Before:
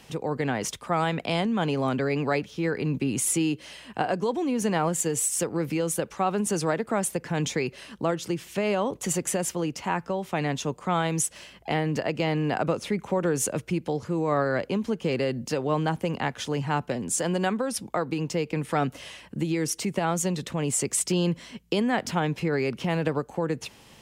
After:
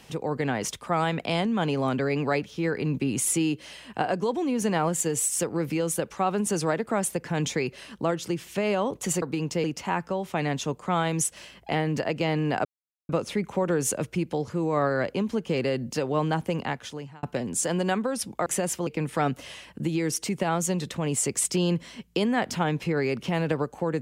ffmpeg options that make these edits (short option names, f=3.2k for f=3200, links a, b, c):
-filter_complex "[0:a]asplit=7[a][b][c][d][e][f][g];[a]atrim=end=9.222[h];[b]atrim=start=18.008:end=18.432[i];[c]atrim=start=9.628:end=12.64,asetpts=PTS-STARTPTS,afade=t=out:st=3.008:d=0.004:c=hsin,apad=pad_dur=0.44[j];[d]atrim=start=12.64:end=16.78,asetpts=PTS-STARTPTS,afade=t=in:d=0.004:c=hsin,afade=t=out:st=3.48:d=0.66[k];[e]atrim=start=16.78:end=18.012,asetpts=PTS-STARTPTS,afade=t=in:d=0.004:c=hsin[l];[f]atrim=start=9.218:end=9.632[m];[g]atrim=start=18.428[n];[h][i]acrossfade=d=0.004:c1=hsin:c2=hsin[o];[j][k][l]concat=n=3:v=0:a=1[p];[o][p]acrossfade=d=0.004:c1=hsin:c2=hsin[q];[q][m]acrossfade=d=0.004:c1=hsin:c2=hsin[r];[r][n]acrossfade=d=0.004:c1=hsin:c2=hsin"